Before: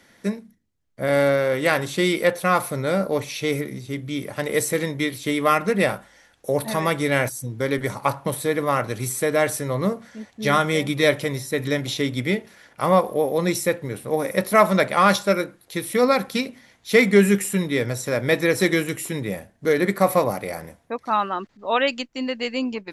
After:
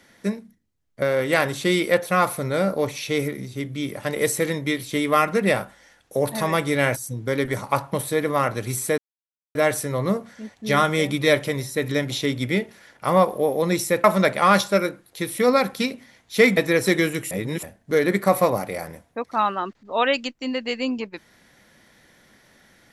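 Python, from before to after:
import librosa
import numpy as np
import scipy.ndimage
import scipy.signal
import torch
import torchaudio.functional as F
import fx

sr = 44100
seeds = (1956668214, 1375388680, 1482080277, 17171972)

y = fx.edit(x, sr, fx.cut(start_s=1.02, length_s=0.33),
    fx.insert_silence(at_s=9.31, length_s=0.57),
    fx.cut(start_s=13.8, length_s=0.79),
    fx.cut(start_s=17.12, length_s=1.19),
    fx.reverse_span(start_s=19.05, length_s=0.32), tone=tone)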